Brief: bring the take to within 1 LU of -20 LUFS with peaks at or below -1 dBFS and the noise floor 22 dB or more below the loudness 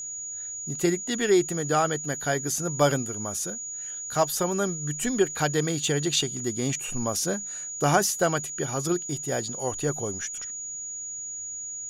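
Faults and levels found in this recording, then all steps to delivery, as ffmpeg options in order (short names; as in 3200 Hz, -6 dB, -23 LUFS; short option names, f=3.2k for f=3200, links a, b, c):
steady tone 6800 Hz; tone level -33 dBFS; loudness -27.0 LUFS; peak -6.5 dBFS; loudness target -20.0 LUFS
-> -af "bandreject=f=6.8k:w=30"
-af "volume=7dB,alimiter=limit=-1dB:level=0:latency=1"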